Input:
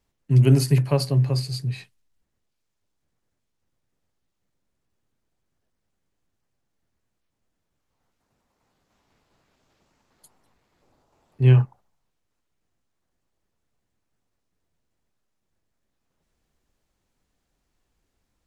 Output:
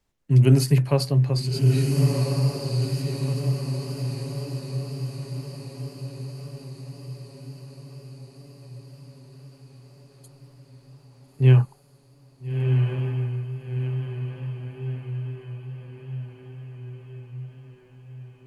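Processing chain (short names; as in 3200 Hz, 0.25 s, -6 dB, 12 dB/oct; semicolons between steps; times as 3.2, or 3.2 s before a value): on a send: diffused feedback echo 1.357 s, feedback 58%, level -3 dB; on the sum: wow and flutter 25 cents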